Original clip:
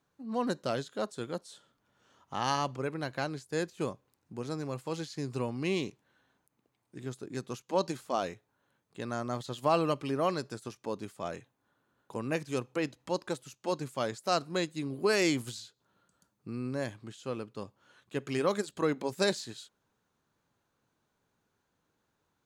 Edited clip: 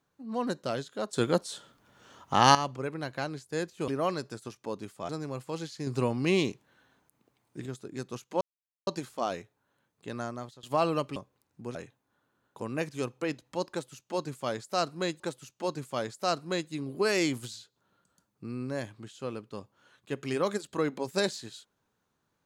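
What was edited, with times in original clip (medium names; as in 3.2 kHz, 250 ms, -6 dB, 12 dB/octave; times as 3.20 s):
1.13–2.55 s: gain +11 dB
3.88–4.47 s: swap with 10.08–11.29 s
5.25–7.04 s: gain +5.5 dB
7.79 s: insert silence 0.46 s
9.12–9.55 s: fade out, to -21.5 dB
13.24–14.74 s: loop, 2 plays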